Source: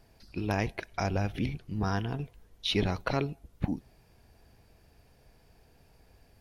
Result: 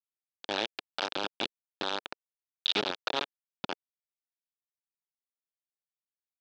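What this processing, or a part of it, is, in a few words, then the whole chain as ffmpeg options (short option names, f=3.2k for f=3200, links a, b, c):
hand-held game console: -af "acrusher=bits=3:mix=0:aa=0.000001,highpass=440,equalizer=f=460:t=q:w=4:g=-4,equalizer=f=700:t=q:w=4:g=-5,equalizer=f=1.1k:t=q:w=4:g=-7,equalizer=f=2k:t=q:w=4:g=-10,equalizer=f=3.6k:t=q:w=4:g=6,lowpass=f=4.4k:w=0.5412,lowpass=f=4.4k:w=1.3066,volume=2.5dB"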